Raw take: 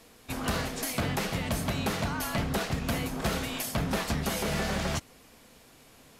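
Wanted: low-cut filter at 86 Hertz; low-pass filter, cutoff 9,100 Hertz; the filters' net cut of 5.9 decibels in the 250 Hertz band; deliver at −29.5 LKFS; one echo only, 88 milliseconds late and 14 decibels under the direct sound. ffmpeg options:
ffmpeg -i in.wav -af "highpass=86,lowpass=9100,equalizer=frequency=250:width_type=o:gain=-8,aecho=1:1:88:0.2,volume=3.5dB" out.wav

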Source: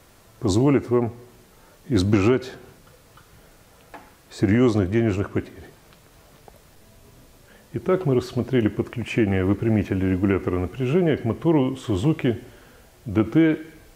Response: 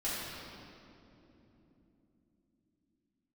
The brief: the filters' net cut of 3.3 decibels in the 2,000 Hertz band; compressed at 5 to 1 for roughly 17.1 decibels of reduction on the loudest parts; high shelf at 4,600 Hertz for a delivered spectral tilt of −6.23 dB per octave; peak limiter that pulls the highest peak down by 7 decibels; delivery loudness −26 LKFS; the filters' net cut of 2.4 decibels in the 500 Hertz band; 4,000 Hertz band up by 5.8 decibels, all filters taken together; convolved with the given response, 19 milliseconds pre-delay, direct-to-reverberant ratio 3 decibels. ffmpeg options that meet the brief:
-filter_complex "[0:a]equalizer=frequency=500:width_type=o:gain=-3.5,equalizer=frequency=2000:width_type=o:gain=-7,equalizer=frequency=4000:width_type=o:gain=7,highshelf=frequency=4600:gain=5.5,acompressor=threshold=-35dB:ratio=5,alimiter=level_in=4.5dB:limit=-24dB:level=0:latency=1,volume=-4.5dB,asplit=2[link_01][link_02];[1:a]atrim=start_sample=2205,adelay=19[link_03];[link_02][link_03]afir=irnorm=-1:irlink=0,volume=-9dB[link_04];[link_01][link_04]amix=inputs=2:normalize=0,volume=12.5dB"

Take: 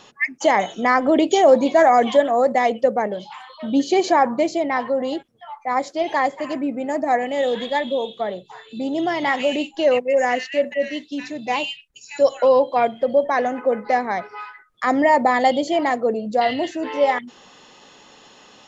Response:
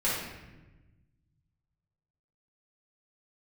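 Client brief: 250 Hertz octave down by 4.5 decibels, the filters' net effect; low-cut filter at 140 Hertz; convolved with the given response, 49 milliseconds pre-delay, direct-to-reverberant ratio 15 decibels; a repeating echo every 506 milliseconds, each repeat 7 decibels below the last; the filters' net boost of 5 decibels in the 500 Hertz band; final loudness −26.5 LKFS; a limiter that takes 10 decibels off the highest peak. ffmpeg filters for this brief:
-filter_complex "[0:a]highpass=140,equalizer=frequency=250:width_type=o:gain=-8.5,equalizer=frequency=500:width_type=o:gain=7.5,alimiter=limit=-8.5dB:level=0:latency=1,aecho=1:1:506|1012|1518|2024|2530:0.447|0.201|0.0905|0.0407|0.0183,asplit=2[link_01][link_02];[1:a]atrim=start_sample=2205,adelay=49[link_03];[link_02][link_03]afir=irnorm=-1:irlink=0,volume=-25dB[link_04];[link_01][link_04]amix=inputs=2:normalize=0,volume=-8dB"

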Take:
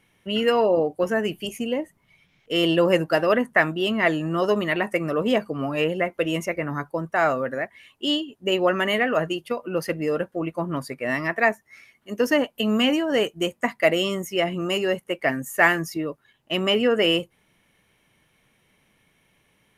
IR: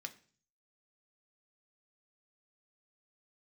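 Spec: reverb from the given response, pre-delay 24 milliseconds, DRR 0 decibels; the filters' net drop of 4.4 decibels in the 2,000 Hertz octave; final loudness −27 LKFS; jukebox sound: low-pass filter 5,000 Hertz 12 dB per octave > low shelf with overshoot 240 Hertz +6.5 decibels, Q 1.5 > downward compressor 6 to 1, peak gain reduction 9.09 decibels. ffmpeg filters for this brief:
-filter_complex "[0:a]equalizer=frequency=2000:width_type=o:gain=-5,asplit=2[link_01][link_02];[1:a]atrim=start_sample=2205,adelay=24[link_03];[link_02][link_03]afir=irnorm=-1:irlink=0,volume=2.5dB[link_04];[link_01][link_04]amix=inputs=2:normalize=0,lowpass=5000,lowshelf=frequency=240:width_type=q:width=1.5:gain=6.5,acompressor=threshold=-20dB:ratio=6,volume=-1.5dB"

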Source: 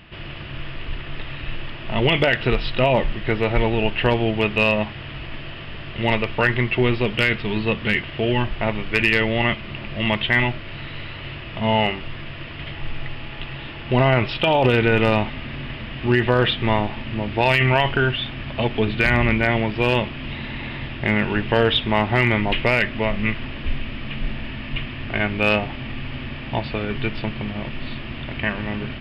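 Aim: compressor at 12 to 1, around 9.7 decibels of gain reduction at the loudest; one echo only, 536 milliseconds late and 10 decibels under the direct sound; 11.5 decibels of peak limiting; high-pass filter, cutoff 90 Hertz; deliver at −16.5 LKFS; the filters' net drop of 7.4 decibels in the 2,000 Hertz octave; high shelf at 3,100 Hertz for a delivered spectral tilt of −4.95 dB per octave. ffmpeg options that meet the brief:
ffmpeg -i in.wav -af "highpass=90,equalizer=frequency=2000:width_type=o:gain=-7,highshelf=frequency=3100:gain=-6,acompressor=threshold=-23dB:ratio=12,alimiter=limit=-22.5dB:level=0:latency=1,aecho=1:1:536:0.316,volume=17dB" out.wav

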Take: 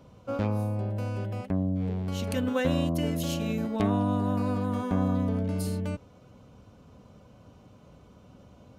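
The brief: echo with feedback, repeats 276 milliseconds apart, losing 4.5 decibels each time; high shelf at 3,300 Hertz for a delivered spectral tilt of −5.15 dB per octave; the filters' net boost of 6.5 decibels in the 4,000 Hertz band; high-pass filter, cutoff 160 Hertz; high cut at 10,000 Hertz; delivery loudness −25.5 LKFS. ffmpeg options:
ffmpeg -i in.wav -af "highpass=160,lowpass=10000,highshelf=frequency=3300:gain=3.5,equalizer=frequency=4000:width_type=o:gain=6.5,aecho=1:1:276|552|828|1104|1380|1656|1932|2208|2484:0.596|0.357|0.214|0.129|0.0772|0.0463|0.0278|0.0167|0.01,volume=3dB" out.wav

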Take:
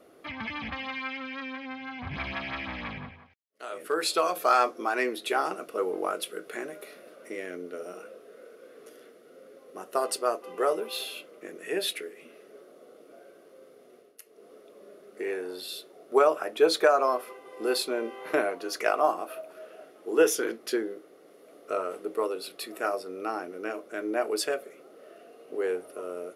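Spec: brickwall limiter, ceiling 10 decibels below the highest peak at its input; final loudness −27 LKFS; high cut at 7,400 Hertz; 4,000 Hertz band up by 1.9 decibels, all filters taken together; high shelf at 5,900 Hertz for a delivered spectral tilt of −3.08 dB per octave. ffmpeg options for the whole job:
ffmpeg -i in.wav -af "lowpass=7400,equalizer=frequency=4000:width_type=o:gain=3.5,highshelf=frequency=5900:gain=-3,volume=6dB,alimiter=limit=-13.5dB:level=0:latency=1" out.wav

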